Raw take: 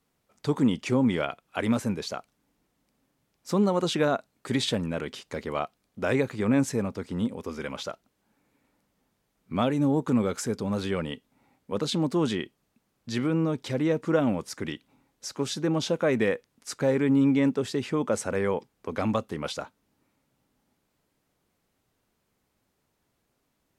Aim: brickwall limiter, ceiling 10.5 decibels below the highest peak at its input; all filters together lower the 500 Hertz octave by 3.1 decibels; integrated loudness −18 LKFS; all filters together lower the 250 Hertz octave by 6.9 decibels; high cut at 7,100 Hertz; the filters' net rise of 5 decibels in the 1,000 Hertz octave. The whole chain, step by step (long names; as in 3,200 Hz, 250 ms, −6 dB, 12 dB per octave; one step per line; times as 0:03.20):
low-pass filter 7,100 Hz
parametric band 250 Hz −8 dB
parametric band 500 Hz −3.5 dB
parametric band 1,000 Hz +8 dB
level +15 dB
brickwall limiter −5 dBFS